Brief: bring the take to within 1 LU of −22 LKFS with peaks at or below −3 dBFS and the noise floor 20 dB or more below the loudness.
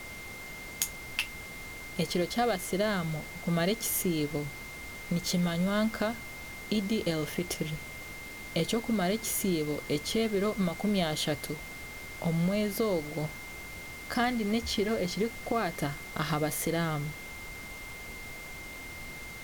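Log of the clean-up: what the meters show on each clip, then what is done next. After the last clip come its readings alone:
interfering tone 2,100 Hz; level of the tone −43 dBFS; background noise floor −43 dBFS; target noise floor −52 dBFS; integrated loudness −32.0 LKFS; sample peak −12.5 dBFS; target loudness −22.0 LKFS
→ notch filter 2,100 Hz, Q 30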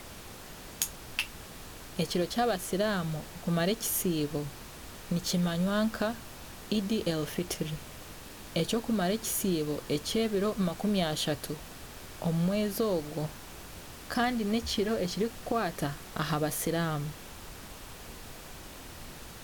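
interfering tone none found; background noise floor −46 dBFS; target noise floor −52 dBFS
→ noise reduction from a noise print 6 dB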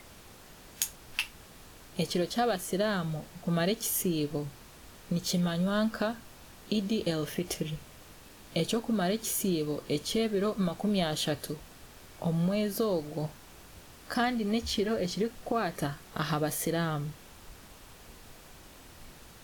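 background noise floor −52 dBFS; integrated loudness −31.5 LKFS; sample peak −13.0 dBFS; target loudness −22.0 LKFS
→ level +9.5 dB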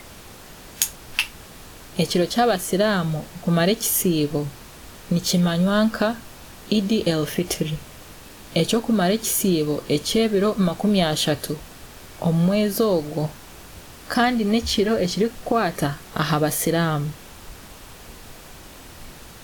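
integrated loudness −22.0 LKFS; sample peak −3.5 dBFS; background noise floor −43 dBFS

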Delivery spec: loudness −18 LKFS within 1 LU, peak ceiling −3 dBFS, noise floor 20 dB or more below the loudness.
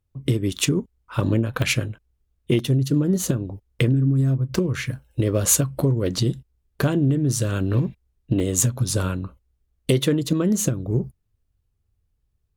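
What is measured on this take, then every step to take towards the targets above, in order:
number of dropouts 3; longest dropout 2.0 ms; integrated loudness −22.5 LKFS; sample peak −4.5 dBFS; target loudness −18.0 LKFS
→ repair the gap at 0:01.62/0:02.59/0:08.40, 2 ms
level +4.5 dB
brickwall limiter −3 dBFS

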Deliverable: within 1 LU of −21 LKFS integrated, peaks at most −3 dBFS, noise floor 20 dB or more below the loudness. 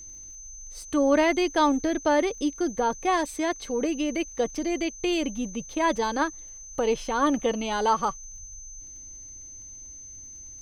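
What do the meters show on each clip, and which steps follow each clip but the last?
crackle rate 32 per second; interfering tone 6,200 Hz; level of the tone −41 dBFS; integrated loudness −26.0 LKFS; sample peak −10.0 dBFS; target loudness −21.0 LKFS
→ click removal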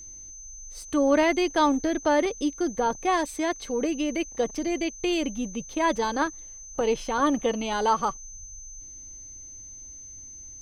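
crackle rate 0.75 per second; interfering tone 6,200 Hz; level of the tone −41 dBFS
→ notch filter 6,200 Hz, Q 30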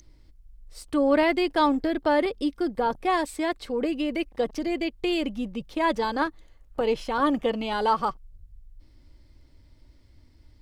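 interfering tone none found; integrated loudness −26.0 LKFS; sample peak −10.0 dBFS; target loudness −21.0 LKFS
→ level +5 dB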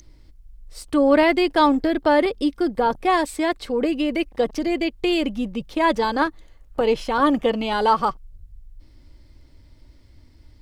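integrated loudness −21.0 LKFS; sample peak −5.0 dBFS; background noise floor −51 dBFS

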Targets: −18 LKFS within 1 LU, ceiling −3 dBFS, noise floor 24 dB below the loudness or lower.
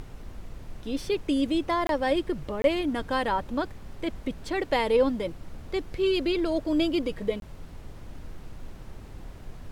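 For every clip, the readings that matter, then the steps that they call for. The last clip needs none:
number of dropouts 3; longest dropout 22 ms; background noise floor −45 dBFS; target noise floor −52 dBFS; integrated loudness −28.0 LKFS; sample peak −10.0 dBFS; target loudness −18.0 LKFS
→ repair the gap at 0:01.87/0:02.62/0:07.40, 22 ms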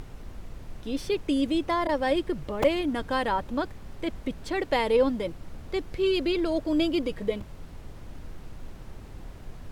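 number of dropouts 0; background noise floor −44 dBFS; target noise floor −52 dBFS
→ noise reduction from a noise print 8 dB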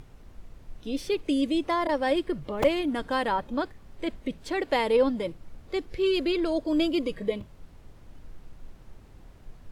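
background noise floor −51 dBFS; target noise floor −52 dBFS
→ noise reduction from a noise print 6 dB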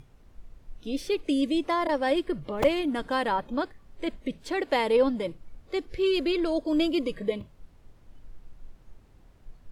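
background noise floor −56 dBFS; integrated loudness −28.0 LKFS; sample peak −10.0 dBFS; target loudness −18.0 LKFS
→ level +10 dB
brickwall limiter −3 dBFS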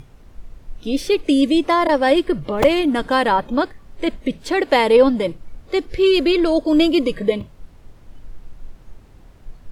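integrated loudness −18.0 LKFS; sample peak −3.0 dBFS; background noise floor −46 dBFS

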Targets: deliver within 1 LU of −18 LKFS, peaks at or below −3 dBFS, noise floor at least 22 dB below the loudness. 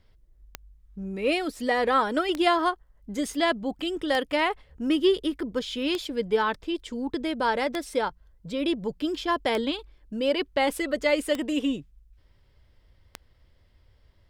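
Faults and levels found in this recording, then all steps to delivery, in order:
number of clicks 8; integrated loudness −27.0 LKFS; sample peak −10.0 dBFS; target loudness −18.0 LKFS
→ click removal
level +9 dB
brickwall limiter −3 dBFS

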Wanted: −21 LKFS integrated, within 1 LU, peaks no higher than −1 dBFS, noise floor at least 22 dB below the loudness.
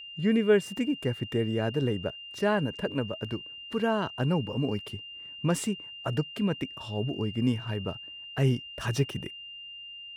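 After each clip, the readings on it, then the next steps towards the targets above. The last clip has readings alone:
interfering tone 2,800 Hz; level of the tone −41 dBFS; integrated loudness −30.0 LKFS; sample peak −13.0 dBFS; target loudness −21.0 LKFS
→ notch filter 2,800 Hz, Q 30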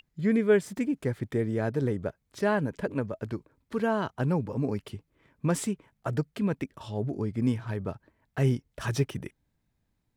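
interfering tone none found; integrated loudness −30.0 LKFS; sample peak −13.0 dBFS; target loudness −21.0 LKFS
→ level +9 dB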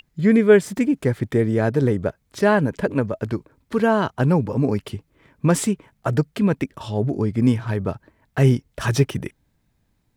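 integrated loudness −21.0 LKFS; sample peak −4.0 dBFS; background noise floor −68 dBFS

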